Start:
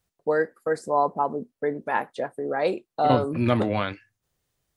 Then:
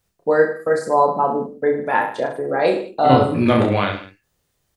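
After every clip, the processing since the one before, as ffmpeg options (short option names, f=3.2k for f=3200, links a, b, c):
-af "aecho=1:1:30|64.5|104.2|149.8|202.3:0.631|0.398|0.251|0.158|0.1,volume=5dB"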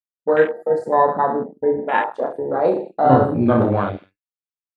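-af "agate=range=-33dB:threshold=-33dB:ratio=3:detection=peak,afwtdn=0.0891"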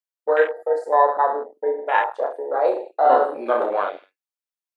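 -af "highpass=f=460:w=0.5412,highpass=f=460:w=1.3066"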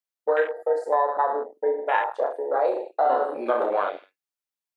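-af "acompressor=threshold=-18dB:ratio=5"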